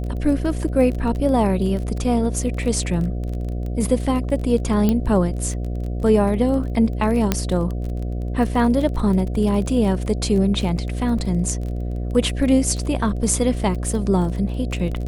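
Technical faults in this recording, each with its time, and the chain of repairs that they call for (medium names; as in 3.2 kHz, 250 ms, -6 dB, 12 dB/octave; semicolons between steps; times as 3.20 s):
buzz 60 Hz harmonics 12 -25 dBFS
crackle 24 per s -27 dBFS
4.89 s: pop -7 dBFS
7.32 s: pop -3 dBFS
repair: de-click; de-hum 60 Hz, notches 12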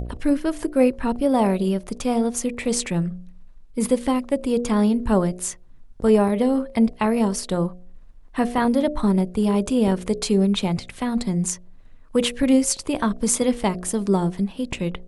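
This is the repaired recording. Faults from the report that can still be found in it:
nothing left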